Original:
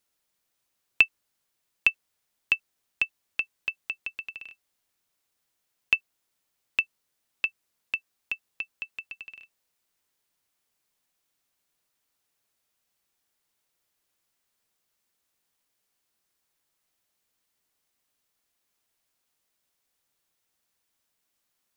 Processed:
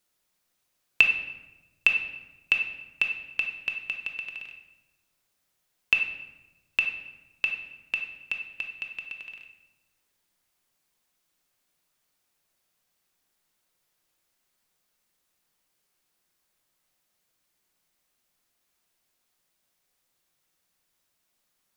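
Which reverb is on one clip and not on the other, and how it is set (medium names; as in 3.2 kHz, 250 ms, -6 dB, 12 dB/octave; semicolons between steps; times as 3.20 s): simulated room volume 550 m³, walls mixed, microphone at 0.95 m; trim +1 dB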